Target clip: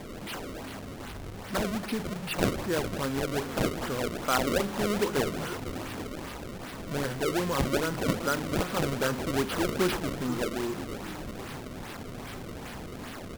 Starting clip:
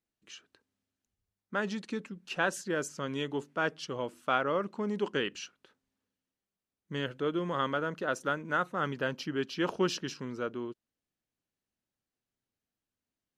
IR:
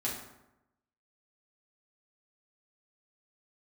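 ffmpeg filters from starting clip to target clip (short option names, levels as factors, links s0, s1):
-filter_complex "[0:a]aeval=exprs='val(0)+0.5*0.0211*sgn(val(0))':c=same,asplit=9[s0][s1][s2][s3][s4][s5][s6][s7][s8];[s1]adelay=488,afreqshift=-50,volume=0.266[s9];[s2]adelay=976,afreqshift=-100,volume=0.17[s10];[s3]adelay=1464,afreqshift=-150,volume=0.108[s11];[s4]adelay=1952,afreqshift=-200,volume=0.07[s12];[s5]adelay=2440,afreqshift=-250,volume=0.0447[s13];[s6]adelay=2928,afreqshift=-300,volume=0.0285[s14];[s7]adelay=3416,afreqshift=-350,volume=0.0182[s15];[s8]adelay=3904,afreqshift=-400,volume=0.0117[s16];[s0][s9][s10][s11][s12][s13][s14][s15][s16]amix=inputs=9:normalize=0,asplit=2[s17][s18];[1:a]atrim=start_sample=2205[s19];[s18][s19]afir=irnorm=-1:irlink=0,volume=0.141[s20];[s17][s20]amix=inputs=2:normalize=0,acrusher=samples=30:mix=1:aa=0.000001:lfo=1:lforange=48:lforate=2.5"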